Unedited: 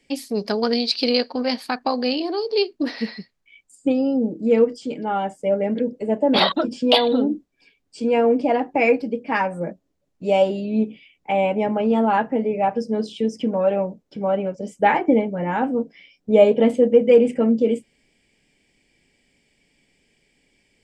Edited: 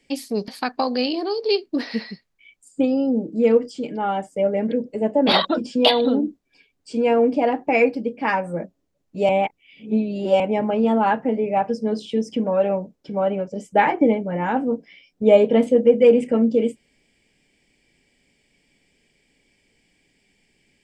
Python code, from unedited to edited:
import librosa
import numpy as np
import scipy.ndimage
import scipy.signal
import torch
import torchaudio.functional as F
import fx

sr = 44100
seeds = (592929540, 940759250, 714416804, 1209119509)

y = fx.edit(x, sr, fx.cut(start_s=0.48, length_s=1.07),
    fx.reverse_span(start_s=10.36, length_s=1.11), tone=tone)